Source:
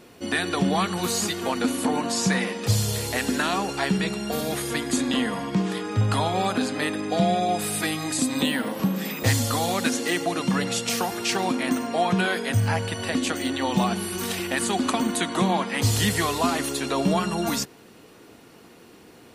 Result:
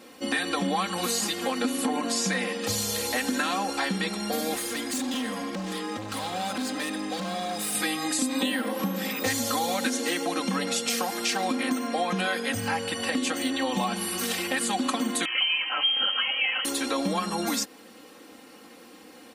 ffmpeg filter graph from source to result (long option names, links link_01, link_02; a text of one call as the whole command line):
ffmpeg -i in.wav -filter_complex "[0:a]asettb=1/sr,asplit=3[link_01][link_02][link_03];[link_01]atrim=end=4.564[link_04];[link_02]atrim=start=4.56:end=7.75,asetpts=PTS-STARTPTS,afade=type=in:duration=0.004:curve=qsin,afade=type=out:start_time=3.186:duration=0.004:curve=qsin,acrossover=split=210|3000[link_05][link_06][link_07];[link_06]acompressor=threshold=-32dB:ratio=2:attack=3.2:release=140:knee=2.83:detection=peak[link_08];[link_05][link_08][link_07]amix=inputs=3:normalize=0,asoftclip=type=hard:threshold=-28dB[link_09];[link_03]atrim=start=7.746[link_10];[link_04][link_09]acrossfade=duration=0.004:curve1=hsin:curve2=qsin[link_11];[link_11][link_10]acrossfade=duration=0.004:curve1=qsin:curve2=hsin,asettb=1/sr,asplit=3[link_12][link_13][link_14];[link_12]atrim=end=15.254[link_15];[link_13]atrim=start=15.25:end=16.65,asetpts=PTS-STARTPTS,afade=type=in:duration=0.004:curve=qsin,afade=type=out:start_time=1.396:duration=0.004:curve=qsin,acompressor=mode=upward:threshold=-23dB:ratio=2.5:attack=3.2:release=140:knee=2.83:detection=peak,lowpass=frequency=2800:width_type=q:width=0.5098,lowpass=frequency=2800:width_type=q:width=0.6013,lowpass=frequency=2800:width_type=q:width=0.9,lowpass=frequency=2800:width_type=q:width=2.563,afreqshift=-3300[link_16];[link_14]atrim=start=16.646[link_17];[link_15][link_16]acrossfade=duration=0.004:curve1=hsin:curve2=qsin[link_18];[link_18][link_17]acrossfade=duration=0.004:curve1=qsin:curve2=hsin,highpass=frequency=280:poles=1,aecho=1:1:3.8:0.85,acompressor=threshold=-25dB:ratio=2.5" out.wav